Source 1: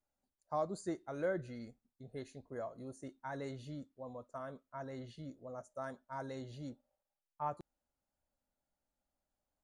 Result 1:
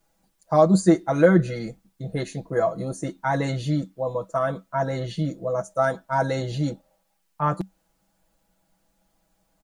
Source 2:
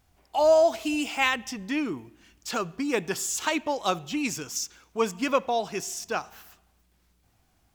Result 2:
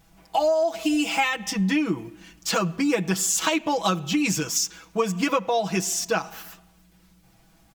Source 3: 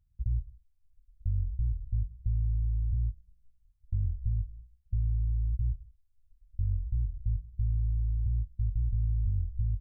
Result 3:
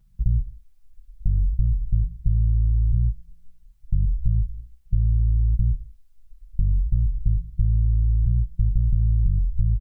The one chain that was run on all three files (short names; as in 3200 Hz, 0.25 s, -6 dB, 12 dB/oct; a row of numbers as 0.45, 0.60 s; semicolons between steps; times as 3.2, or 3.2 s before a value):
bell 190 Hz +10.5 dB 0.2 oct; comb 6.1 ms, depth 90%; compressor 12:1, threshold -25 dBFS; match loudness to -24 LUFS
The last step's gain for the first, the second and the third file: +17.5, +6.0, +11.5 dB